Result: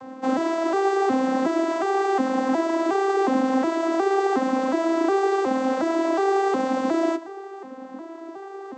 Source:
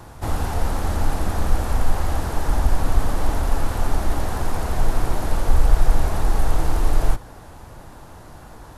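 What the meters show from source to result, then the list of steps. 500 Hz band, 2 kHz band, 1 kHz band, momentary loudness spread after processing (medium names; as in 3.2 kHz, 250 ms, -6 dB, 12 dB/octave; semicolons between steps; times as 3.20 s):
+10.0 dB, +3.5 dB, +5.5 dB, 16 LU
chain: vocoder on a broken chord major triad, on C4, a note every 363 ms; tape noise reduction on one side only decoder only; trim +8 dB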